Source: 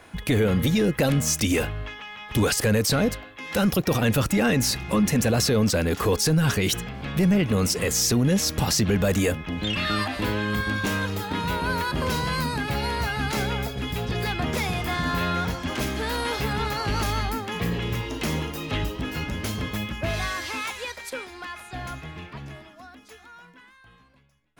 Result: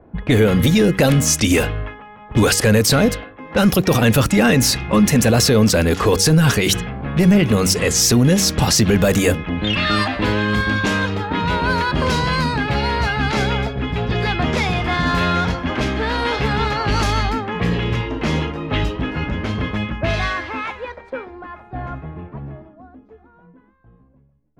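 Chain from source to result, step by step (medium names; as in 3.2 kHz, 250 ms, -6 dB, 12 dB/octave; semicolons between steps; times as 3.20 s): level-controlled noise filter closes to 450 Hz, open at -19 dBFS; de-hum 95.59 Hz, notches 5; trim +7.5 dB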